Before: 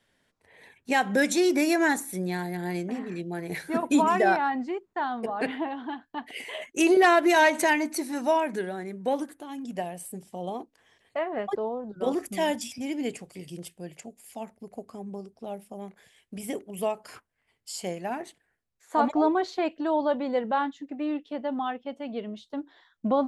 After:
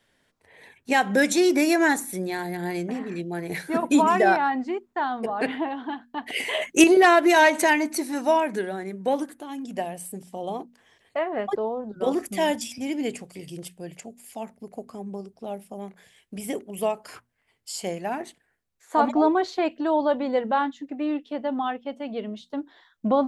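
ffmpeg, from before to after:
-filter_complex "[0:a]asettb=1/sr,asplit=3[a][b][c];[a]atrim=end=6.264[d];[b]atrim=start=6.26:end=6.84,asetpts=PTS-STARTPTS,afade=t=in:d=0.004:c=qsin,afade=t=out:st=0.576:d=0.004:c=qsin,acontrast=75[e];[c]atrim=start=6.836[f];[d][e]acrossfade=d=0.004:c1=hsin:c2=qsin[g];[g][f]acrossfade=d=0.004:c1=qsin:c2=hsin,bandreject=f=60:t=h:w=6,bandreject=f=120:t=h:w=6,bandreject=f=180:t=h:w=6,bandreject=f=240:t=h:w=6,volume=3dB"

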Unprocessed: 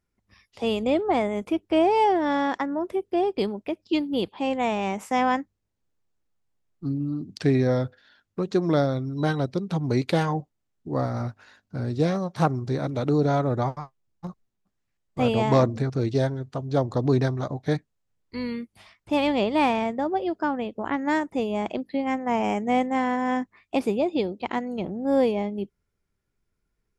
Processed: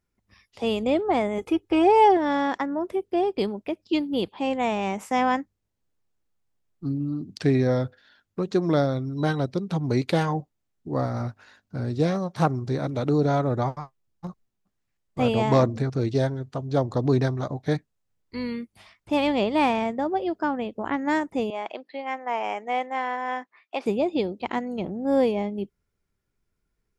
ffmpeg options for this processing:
-filter_complex "[0:a]asettb=1/sr,asplit=3[a][b][c];[a]atrim=end=1.384[d];[b]atrim=start=1.38:end=2.17,asetpts=PTS-STARTPTS,afade=t=in:d=0.004:c=qsin,afade=t=out:st=0.786:d=0.004:c=qsin,aecho=1:1:2.4:0.65,atrim=end_sample=34839[e];[c]atrim=start=2.166[f];[d][e]acrossfade=d=0.004:c1=hsin:c2=qsin[g];[g][f]acrossfade=d=0.004:c1=qsin:c2=hsin,asettb=1/sr,asplit=3[h][i][j];[h]atrim=end=21.504[k];[i]atrim=start=21.5:end=23.86,asetpts=PTS-STARTPTS,afade=t=in:d=0.004:c=qsin,afade=t=out:st=2.356:d=0.004:c=qsin,highpass=600,lowpass=4.5k[l];[j]atrim=start=23.856[m];[k][l]acrossfade=d=0.004:c1=hsin:c2=qsin[n];[n][m]acrossfade=d=0.004:c1=qsin:c2=hsin"

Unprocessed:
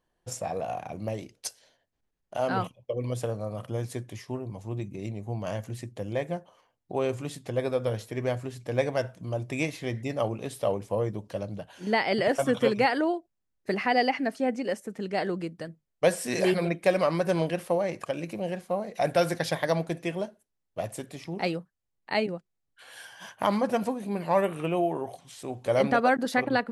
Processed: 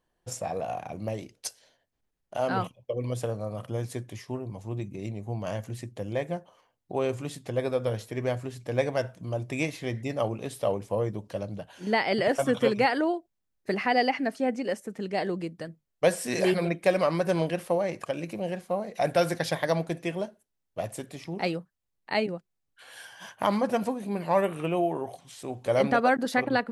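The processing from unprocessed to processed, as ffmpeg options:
-filter_complex "[0:a]asettb=1/sr,asplit=3[a][b][c];[a]atrim=end=15.114[d];[b]atrim=start=15.11:end=15.58,asetpts=PTS-STARTPTS,afade=t=in:d=0.004:c=qsin,afade=t=out:st=0.466:d=0.004:c=qsin,equalizer=f=1.4k:t=o:w=0.37:g=-6[e];[c]atrim=start=15.576[f];[d][e]acrossfade=d=0.004:c1=hsin:c2=qsin[g];[g][f]acrossfade=d=0.004:c1=qsin:c2=hsin"

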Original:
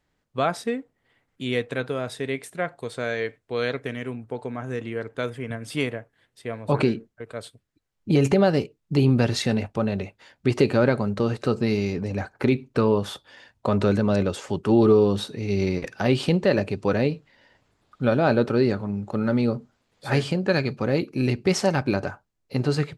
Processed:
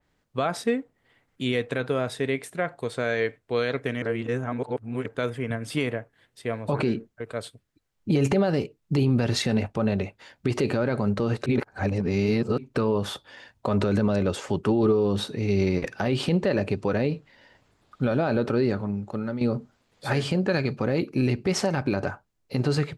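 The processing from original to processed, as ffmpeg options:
-filter_complex "[0:a]asplit=6[a][b][c][d][e][f];[a]atrim=end=4.022[g];[b]atrim=start=4.018:end=5.062,asetpts=PTS-STARTPTS,areverse[h];[c]atrim=start=5.058:end=11.462[i];[d]atrim=start=11.458:end=12.582,asetpts=PTS-STARTPTS,areverse[j];[e]atrim=start=12.578:end=19.41,asetpts=PTS-STARTPTS,afade=t=out:st=6.052:d=0.78:silence=0.199526[k];[f]atrim=start=19.41,asetpts=PTS-STARTPTS,afade=t=in:d=0.004:c=hsin:silence=0.199526[l];[g][h]acrossfade=d=0.004:c1=hsin:c2=hsin[m];[m][i]acrossfade=d=0.004:c1=hsin:c2=hsin[n];[n][j]acrossfade=d=0.004:c1=hsin:c2=hsin[o];[k][l]concat=n=2:v=0:a=1[p];[o][p]acrossfade=d=0.004:c1=hsin:c2=hsin,alimiter=limit=-16dB:level=0:latency=1:release=70,adynamicequalizer=threshold=0.00398:dfrequency=3000:dqfactor=0.7:tfrequency=3000:tqfactor=0.7:attack=5:release=100:ratio=0.375:range=1.5:mode=cutabove:tftype=highshelf,volume=2.5dB"

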